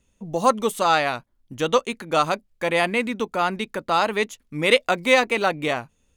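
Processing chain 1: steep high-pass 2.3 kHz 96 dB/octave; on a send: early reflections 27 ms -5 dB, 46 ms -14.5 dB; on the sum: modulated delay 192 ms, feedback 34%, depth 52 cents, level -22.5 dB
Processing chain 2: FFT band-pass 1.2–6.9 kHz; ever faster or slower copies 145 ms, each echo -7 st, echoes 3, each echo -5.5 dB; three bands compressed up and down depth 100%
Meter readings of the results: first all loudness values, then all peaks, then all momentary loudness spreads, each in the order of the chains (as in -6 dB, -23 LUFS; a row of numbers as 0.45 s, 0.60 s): -28.0 LUFS, -24.5 LUFS; -7.0 dBFS, -8.0 dBFS; 13 LU, 5 LU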